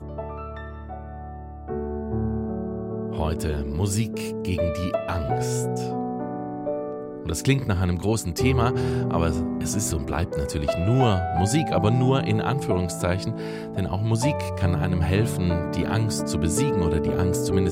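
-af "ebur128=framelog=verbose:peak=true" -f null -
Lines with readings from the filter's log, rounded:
Integrated loudness:
  I:         -24.8 LUFS
  Threshold: -35.0 LUFS
Loudness range:
  LRA:         5.2 LU
  Threshold: -44.9 LUFS
  LRA low:   -28.1 LUFS
  LRA high:  -22.9 LUFS
True peak:
  Peak:       -7.6 dBFS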